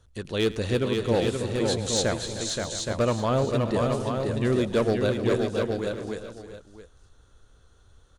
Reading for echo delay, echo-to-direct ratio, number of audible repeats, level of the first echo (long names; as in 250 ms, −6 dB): 107 ms, −1.0 dB, 11, −18.0 dB